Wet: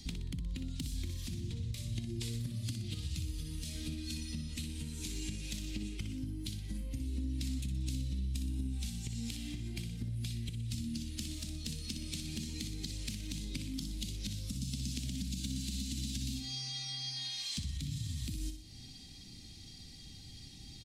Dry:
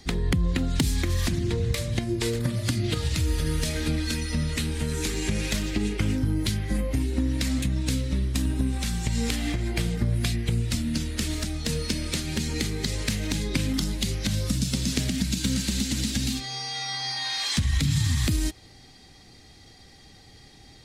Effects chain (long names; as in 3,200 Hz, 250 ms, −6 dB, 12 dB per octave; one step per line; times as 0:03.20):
flat-topped bell 870 Hz −14.5 dB 2.7 octaves
downward compressor, threshold −38 dBFS, peak gain reduction 17 dB
repeating echo 61 ms, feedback 48%, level −8.5 dB